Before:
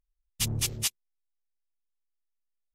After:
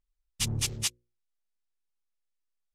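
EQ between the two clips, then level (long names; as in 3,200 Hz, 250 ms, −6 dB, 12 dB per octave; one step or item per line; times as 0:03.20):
low-pass filter 10,000 Hz 12 dB per octave
mains-hum notches 60/120/180/240/300/360/420/480/540 Hz
notch filter 650 Hz, Q 12
0.0 dB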